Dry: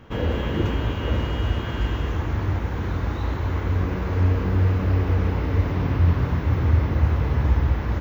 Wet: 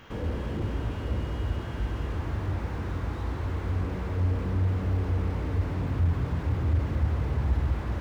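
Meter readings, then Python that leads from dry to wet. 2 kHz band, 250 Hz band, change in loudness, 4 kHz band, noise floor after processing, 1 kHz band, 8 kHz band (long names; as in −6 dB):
−8.5 dB, −6.5 dB, −6.5 dB, −10.0 dB, −34 dBFS, −7.5 dB, can't be measured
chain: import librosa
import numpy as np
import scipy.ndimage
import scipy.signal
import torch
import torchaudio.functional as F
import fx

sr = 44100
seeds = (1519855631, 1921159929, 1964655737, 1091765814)

y = fx.tilt_shelf(x, sr, db=-6.0, hz=970.0)
y = fx.slew_limit(y, sr, full_power_hz=11.0)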